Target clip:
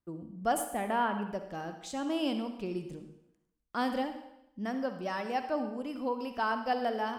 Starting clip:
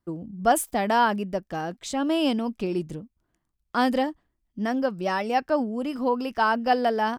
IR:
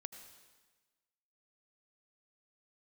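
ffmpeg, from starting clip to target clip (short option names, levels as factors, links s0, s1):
-filter_complex "[0:a]asplit=3[s0][s1][s2];[s0]afade=t=out:st=0.68:d=0.02[s3];[s1]lowpass=f=3100:w=0.5412,lowpass=f=3100:w=1.3066,afade=t=in:st=0.68:d=0.02,afade=t=out:st=1.21:d=0.02[s4];[s2]afade=t=in:st=1.21:d=0.02[s5];[s3][s4][s5]amix=inputs=3:normalize=0[s6];[1:a]atrim=start_sample=2205,asetrate=70560,aresample=44100[s7];[s6][s7]afir=irnorm=-1:irlink=0"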